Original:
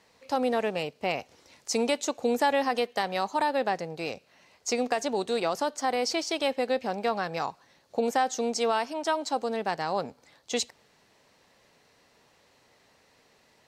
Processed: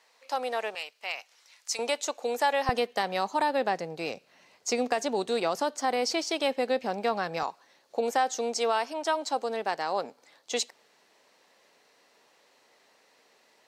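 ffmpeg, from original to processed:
-af "asetnsamples=n=441:p=0,asendcmd='0.75 highpass f 1300;1.79 highpass f 500;2.69 highpass f 150;7.43 highpass f 320',highpass=640"

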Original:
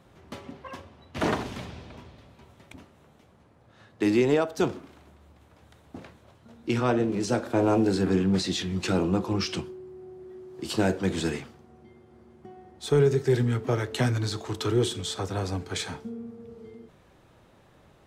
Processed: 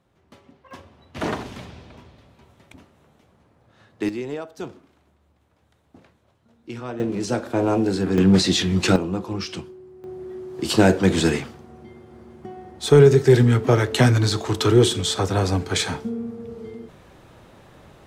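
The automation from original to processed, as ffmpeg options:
-af "asetnsamples=n=441:p=0,asendcmd='0.71 volume volume 0dB;4.09 volume volume -8dB;7 volume volume 2dB;8.18 volume volume 9dB;8.96 volume volume -1dB;10.04 volume volume 9dB',volume=0.335"

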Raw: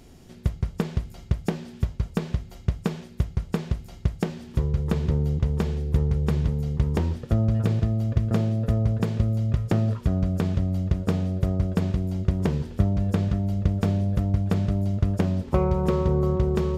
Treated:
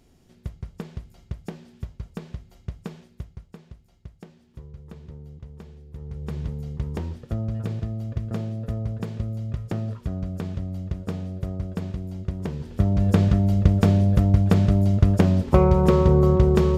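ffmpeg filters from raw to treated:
-af "volume=5.31,afade=t=out:st=3:d=0.54:silence=0.354813,afade=t=in:st=5.95:d=0.5:silence=0.251189,afade=t=in:st=12.57:d=0.59:silence=0.266073"

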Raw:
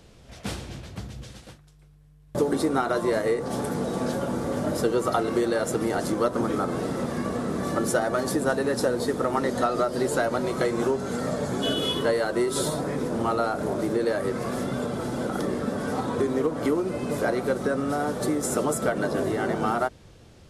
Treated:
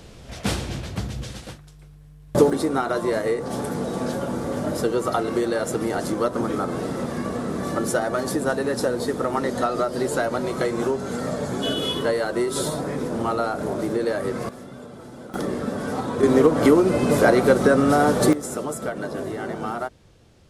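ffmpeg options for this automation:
-af "asetnsamples=n=441:p=0,asendcmd='2.5 volume volume 1dB;14.49 volume volume -11dB;15.34 volume volume 1dB;16.23 volume volume 9dB;18.33 volume volume -3.5dB',volume=2.51"

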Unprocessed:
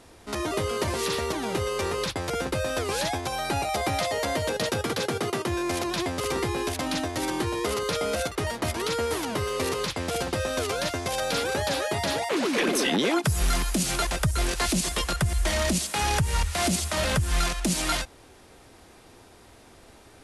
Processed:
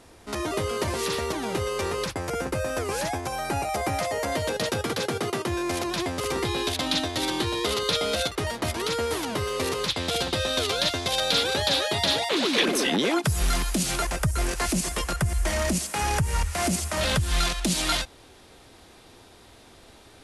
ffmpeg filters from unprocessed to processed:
-af "asetnsamples=n=441:p=0,asendcmd='2.05 equalizer g -7.5;4.32 equalizer g 0.5;6.45 equalizer g 10.5;8.31 equalizer g 2.5;9.89 equalizer g 11.5;12.65 equalizer g 1;13.99 equalizer g -6;17.01 equalizer g 5.5',equalizer=f=3700:t=o:w=0.71:g=-0.5"

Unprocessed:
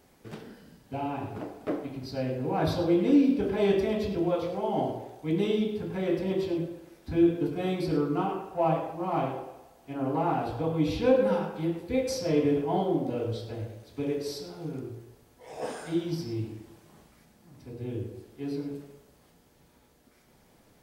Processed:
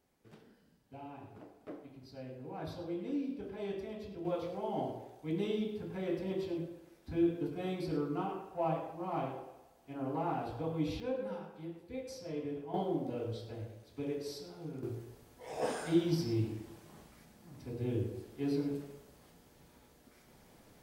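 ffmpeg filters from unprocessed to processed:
-af "asetnsamples=n=441:p=0,asendcmd='4.25 volume volume -8dB;11 volume volume -15dB;12.74 volume volume -7.5dB;14.83 volume volume 0dB',volume=0.168"

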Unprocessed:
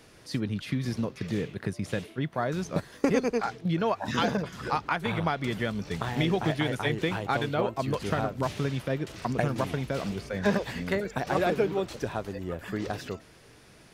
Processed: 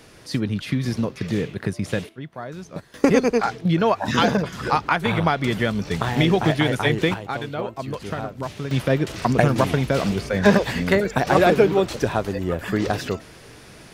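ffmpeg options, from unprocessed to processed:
-af "asetnsamples=n=441:p=0,asendcmd='2.09 volume volume -4.5dB;2.94 volume volume 8dB;7.14 volume volume -0.5dB;8.71 volume volume 10dB',volume=2.11"

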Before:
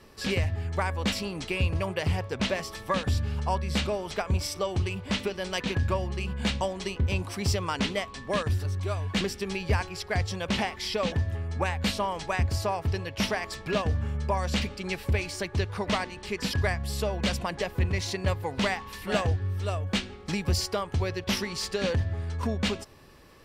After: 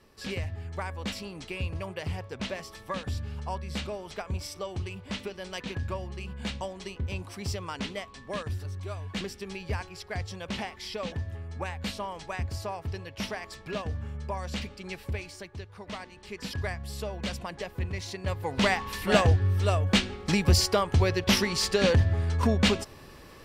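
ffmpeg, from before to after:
-af "volume=4.73,afade=t=out:st=15.06:d=0.62:silence=0.375837,afade=t=in:st=15.68:d=0.93:silence=0.354813,afade=t=in:st=18.23:d=0.62:silence=0.281838"

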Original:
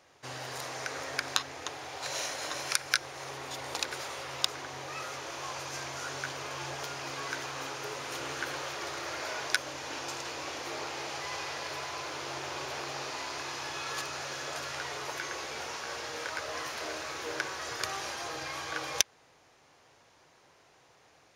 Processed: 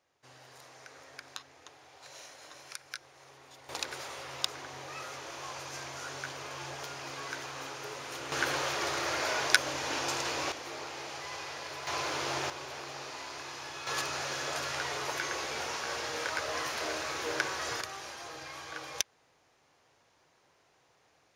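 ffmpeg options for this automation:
-af "asetnsamples=n=441:p=0,asendcmd='3.69 volume volume -3dB;8.32 volume volume 5dB;10.52 volume volume -3.5dB;11.87 volume volume 4.5dB;12.5 volume volume -4.5dB;13.87 volume volume 2.5dB;17.81 volume volume -6dB',volume=0.188"

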